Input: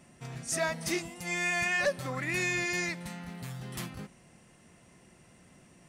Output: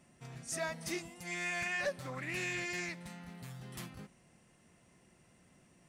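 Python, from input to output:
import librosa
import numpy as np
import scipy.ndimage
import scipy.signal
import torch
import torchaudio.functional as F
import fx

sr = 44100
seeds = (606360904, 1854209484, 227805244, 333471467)

y = fx.doppler_dist(x, sr, depth_ms=0.14, at=(1.23, 3.09))
y = y * librosa.db_to_amplitude(-7.0)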